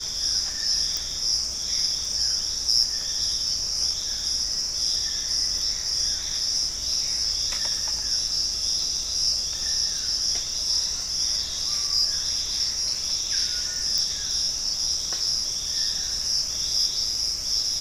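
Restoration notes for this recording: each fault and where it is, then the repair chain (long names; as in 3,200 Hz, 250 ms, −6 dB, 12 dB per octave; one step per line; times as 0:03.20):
surface crackle 32 per second −33 dBFS
0:00.97: click
0:13.98: click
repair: click removal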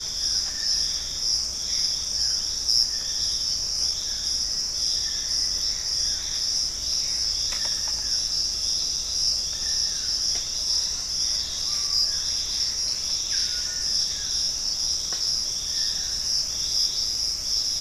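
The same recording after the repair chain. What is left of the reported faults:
0:00.97: click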